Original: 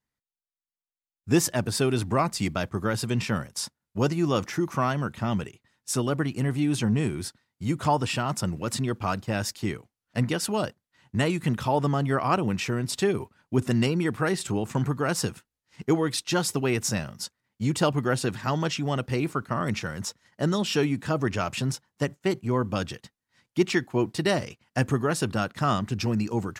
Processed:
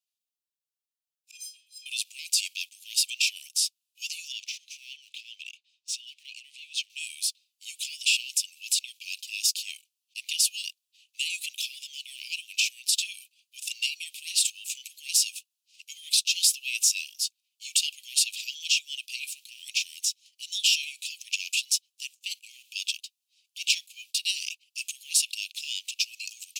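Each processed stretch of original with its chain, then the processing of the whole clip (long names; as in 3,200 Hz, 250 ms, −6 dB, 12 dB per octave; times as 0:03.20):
0:01.31–0:01.86: high-shelf EQ 8,100 Hz −10 dB + stiff-string resonator 370 Hz, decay 0.67 s, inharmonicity 0.03
0:04.32–0:06.90: low-pass filter 4,700 Hz + downward compressor 5 to 1, threshold −29 dBFS
whole clip: transient designer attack −1 dB, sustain +6 dB; leveller curve on the samples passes 1; Butterworth high-pass 2,500 Hz 96 dB per octave; level +3.5 dB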